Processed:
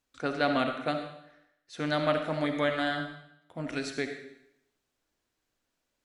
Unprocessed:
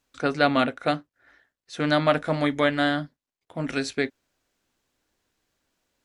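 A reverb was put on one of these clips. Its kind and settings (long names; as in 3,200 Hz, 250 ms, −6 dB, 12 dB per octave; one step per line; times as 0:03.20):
comb and all-pass reverb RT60 0.77 s, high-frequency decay 1×, pre-delay 25 ms, DRR 5.5 dB
level −7 dB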